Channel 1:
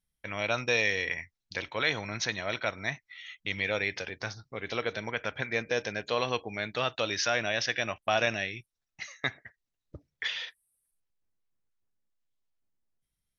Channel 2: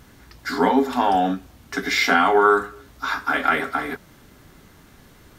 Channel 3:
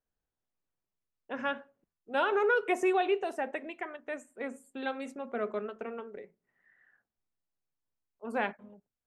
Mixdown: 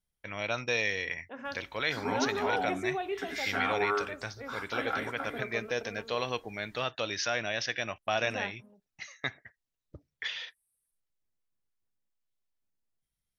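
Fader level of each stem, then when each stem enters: -3.0, -14.5, -6.5 dB; 0.00, 1.45, 0.00 s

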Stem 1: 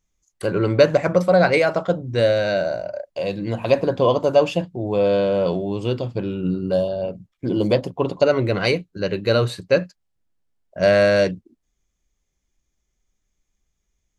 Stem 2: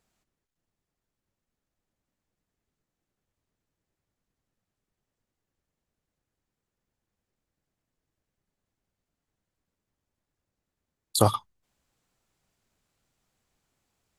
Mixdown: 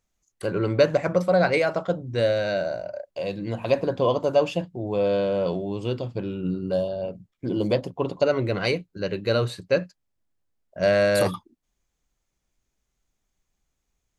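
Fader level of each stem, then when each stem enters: -4.5, -6.5 dB; 0.00, 0.00 s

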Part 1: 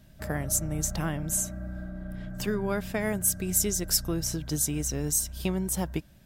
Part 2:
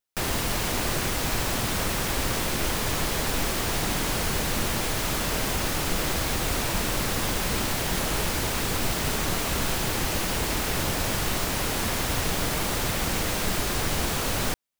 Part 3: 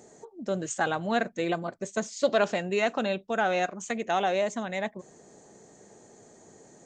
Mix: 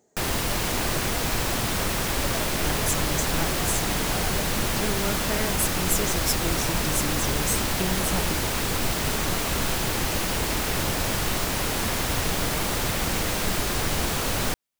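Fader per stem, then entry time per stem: -1.5, +1.0, -12.5 dB; 2.35, 0.00, 0.00 s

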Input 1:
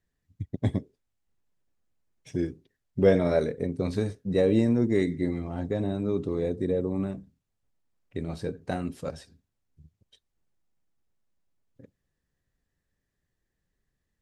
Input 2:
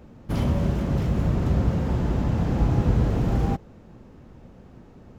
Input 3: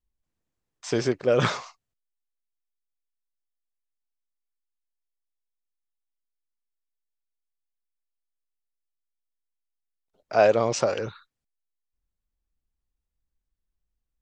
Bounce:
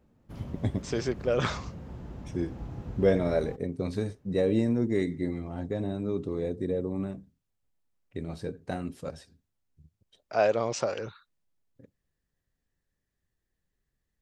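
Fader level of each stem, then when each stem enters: -3.0, -18.0, -5.5 dB; 0.00, 0.00, 0.00 s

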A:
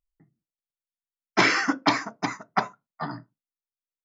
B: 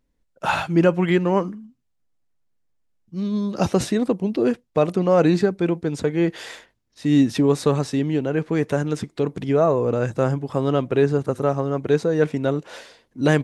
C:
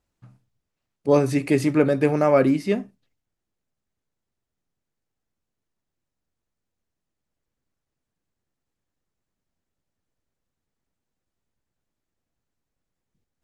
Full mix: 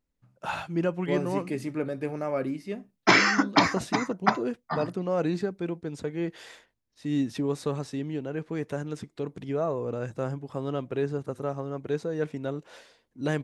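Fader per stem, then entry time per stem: +1.0, -10.5, -12.0 dB; 1.70, 0.00, 0.00 s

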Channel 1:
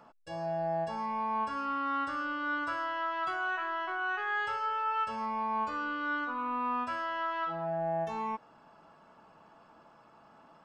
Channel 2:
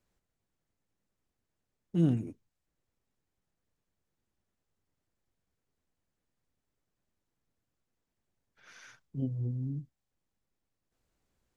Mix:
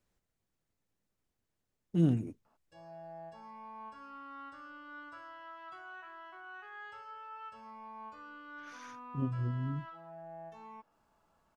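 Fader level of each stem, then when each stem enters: -15.5, -0.5 dB; 2.45, 0.00 s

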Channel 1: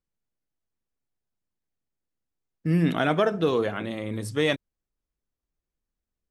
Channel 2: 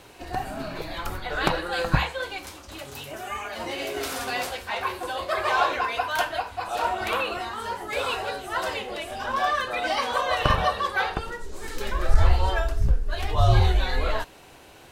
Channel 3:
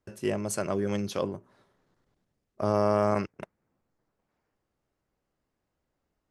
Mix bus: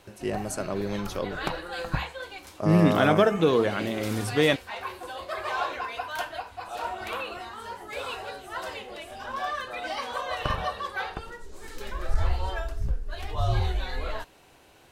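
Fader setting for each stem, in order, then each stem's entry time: +2.0, -7.0, -1.5 dB; 0.00, 0.00, 0.00 s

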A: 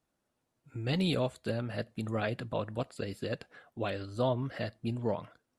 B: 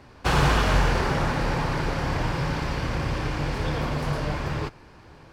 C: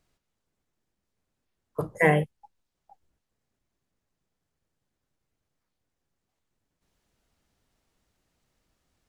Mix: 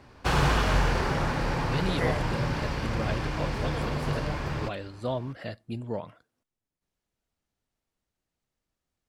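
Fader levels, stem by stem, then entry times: -1.0, -3.0, -10.5 dB; 0.85, 0.00, 0.00 s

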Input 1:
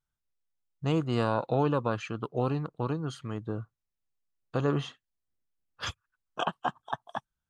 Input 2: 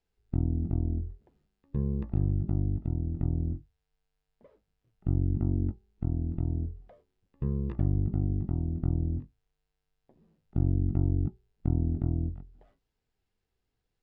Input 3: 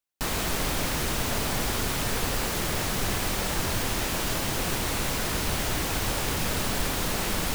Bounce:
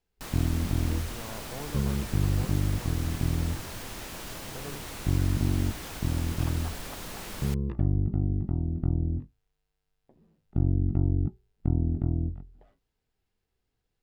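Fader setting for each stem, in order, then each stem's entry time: -15.5, +1.5, -11.5 dB; 0.00, 0.00, 0.00 s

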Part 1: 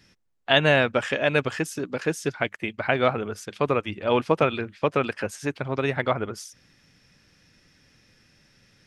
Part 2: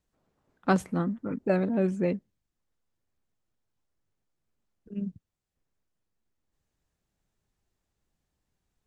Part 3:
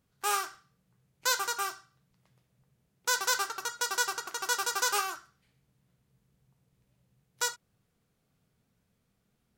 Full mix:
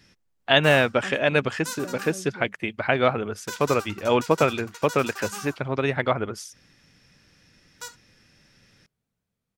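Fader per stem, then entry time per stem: +1.0, -15.5, -8.0 dB; 0.00, 0.35, 0.40 s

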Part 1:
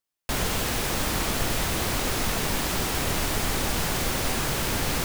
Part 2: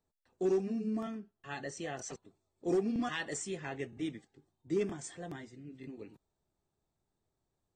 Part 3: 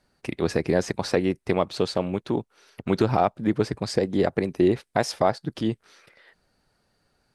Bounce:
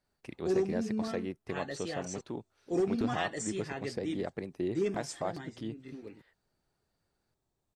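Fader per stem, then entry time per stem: off, +1.0 dB, -14.0 dB; off, 0.05 s, 0.00 s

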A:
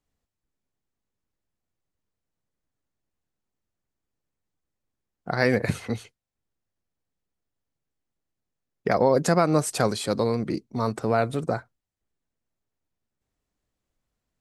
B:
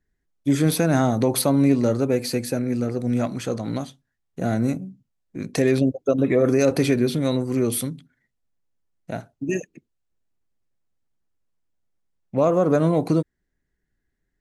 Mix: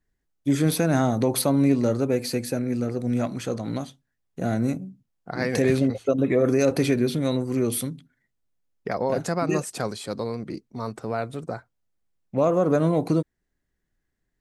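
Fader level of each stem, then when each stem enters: -5.5, -2.0 dB; 0.00, 0.00 s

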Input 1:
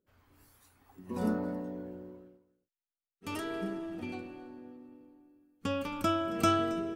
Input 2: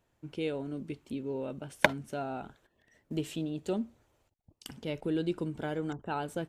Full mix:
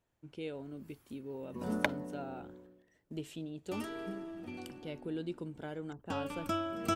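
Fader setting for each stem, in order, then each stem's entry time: -5.0, -7.5 dB; 0.45, 0.00 s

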